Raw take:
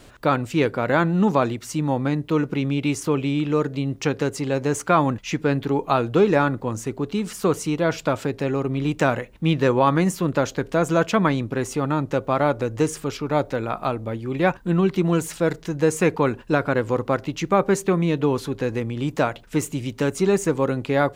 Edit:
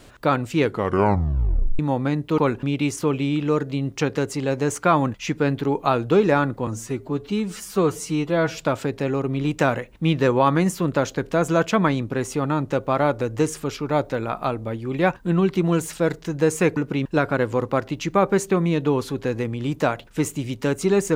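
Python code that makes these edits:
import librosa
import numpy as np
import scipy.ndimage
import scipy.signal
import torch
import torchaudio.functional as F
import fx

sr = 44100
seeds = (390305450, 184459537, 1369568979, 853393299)

y = fx.edit(x, sr, fx.tape_stop(start_s=0.64, length_s=1.15),
    fx.swap(start_s=2.38, length_s=0.29, other_s=16.17, other_length_s=0.25),
    fx.stretch_span(start_s=6.71, length_s=1.27, factor=1.5), tone=tone)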